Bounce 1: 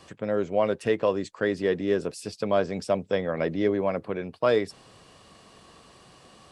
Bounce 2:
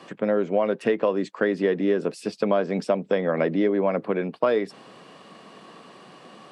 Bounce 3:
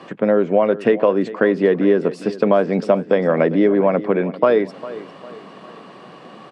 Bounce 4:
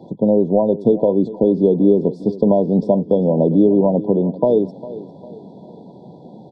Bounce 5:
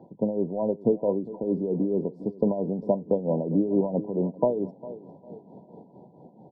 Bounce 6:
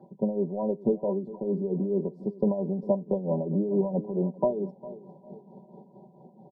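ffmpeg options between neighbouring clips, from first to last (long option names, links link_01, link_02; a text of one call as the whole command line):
ffmpeg -i in.wav -af "highpass=frequency=180:width=0.5412,highpass=frequency=180:width=1.3066,bass=frequency=250:gain=3,treble=frequency=4000:gain=-11,acompressor=threshold=-25dB:ratio=5,volume=7dB" out.wav
ffmpeg -i in.wav -af "lowpass=frequency=2500:poles=1,aecho=1:1:402|804|1206|1608:0.15|0.0628|0.0264|0.0111,volume=7dB" out.wav
ffmpeg -i in.wav -af "aemphasis=mode=reproduction:type=riaa,afftfilt=real='re*(1-between(b*sr/4096,1000,3300))':imag='im*(1-between(b*sr/4096,1000,3300))':win_size=4096:overlap=0.75,volume=-3dB" out.wav
ffmpeg -i in.wav -af "dynaudnorm=framelen=300:gausssize=7:maxgain=11.5dB,tremolo=f=4.5:d=0.69,highshelf=frequency=2200:width_type=q:width=3:gain=-12,volume=-8.5dB" out.wav
ffmpeg -i in.wav -af "aecho=1:1:5.2:0.78,volume=-4.5dB" out.wav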